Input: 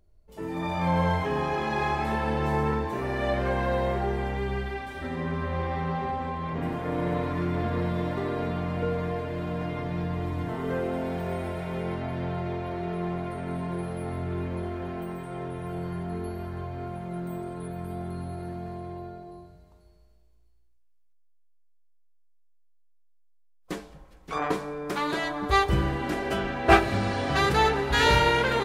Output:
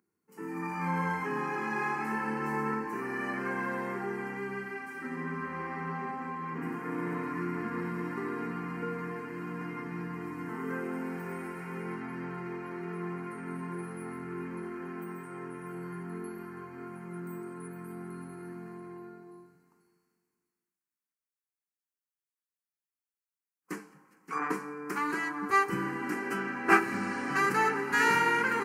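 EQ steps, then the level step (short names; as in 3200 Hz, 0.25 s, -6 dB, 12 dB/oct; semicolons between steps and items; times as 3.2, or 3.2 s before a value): HPF 200 Hz 24 dB/oct; fixed phaser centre 1500 Hz, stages 4; 0.0 dB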